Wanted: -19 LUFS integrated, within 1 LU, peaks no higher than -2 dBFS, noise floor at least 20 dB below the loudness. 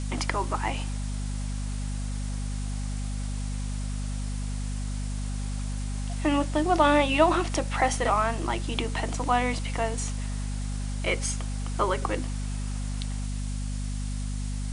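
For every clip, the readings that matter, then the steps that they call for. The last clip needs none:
hum 50 Hz; highest harmonic 250 Hz; hum level -28 dBFS; noise floor -31 dBFS; noise floor target -49 dBFS; loudness -29.0 LUFS; peak level -6.5 dBFS; loudness target -19.0 LUFS
-> hum notches 50/100/150/200/250 Hz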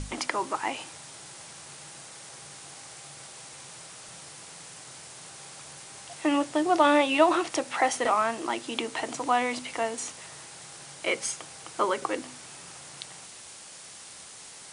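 hum not found; noise floor -46 dBFS; noise floor target -47 dBFS
-> noise reduction 6 dB, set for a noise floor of -46 dBFS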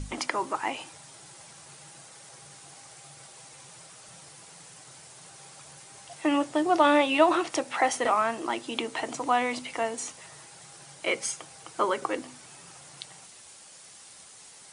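noise floor -50 dBFS; loudness -27.0 LUFS; peak level -6.5 dBFS; loudness target -19.0 LUFS
-> trim +8 dB; peak limiter -2 dBFS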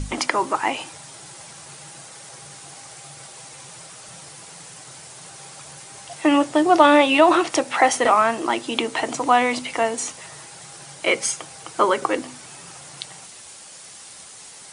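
loudness -19.5 LUFS; peak level -2.0 dBFS; noise floor -42 dBFS

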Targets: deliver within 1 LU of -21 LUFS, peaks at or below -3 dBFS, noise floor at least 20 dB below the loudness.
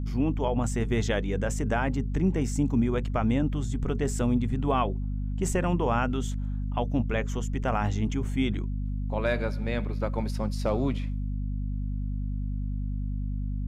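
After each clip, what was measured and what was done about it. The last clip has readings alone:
hum 50 Hz; highest harmonic 250 Hz; hum level -27 dBFS; loudness -29.0 LUFS; peak level -13.5 dBFS; loudness target -21.0 LUFS
-> de-hum 50 Hz, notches 5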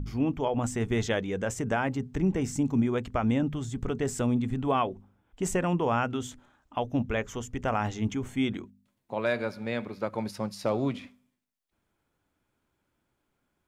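hum not found; loudness -30.0 LUFS; peak level -15.0 dBFS; loudness target -21.0 LUFS
-> trim +9 dB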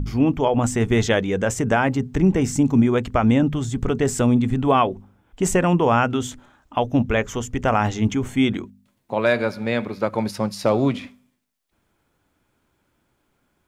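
loudness -21.0 LUFS; peak level -6.0 dBFS; noise floor -70 dBFS

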